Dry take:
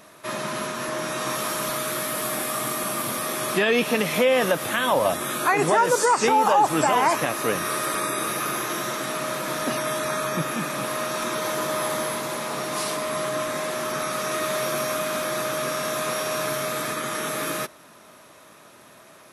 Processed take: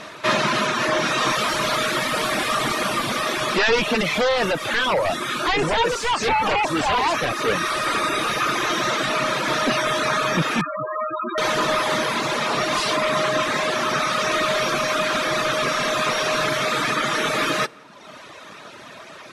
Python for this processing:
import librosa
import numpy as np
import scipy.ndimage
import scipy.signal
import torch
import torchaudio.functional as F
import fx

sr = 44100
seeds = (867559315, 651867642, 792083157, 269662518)

y = fx.high_shelf(x, sr, hz=2300.0, db=9.5)
y = fx.echo_filtered(y, sr, ms=171, feedback_pct=49, hz=1600.0, wet_db=-16.0)
y = fx.fold_sine(y, sr, drive_db=12, ceiling_db=-4.5)
y = scipy.signal.sosfilt(scipy.signal.butter(2, 3700.0, 'lowpass', fs=sr, output='sos'), y)
y = fx.comb_fb(y, sr, f0_hz=460.0, decay_s=0.54, harmonics='all', damping=0.0, mix_pct=60)
y = fx.dereverb_blind(y, sr, rt60_s=1.0)
y = fx.rider(y, sr, range_db=10, speed_s=2.0)
y = fx.spec_topn(y, sr, count=8, at=(10.61, 11.38))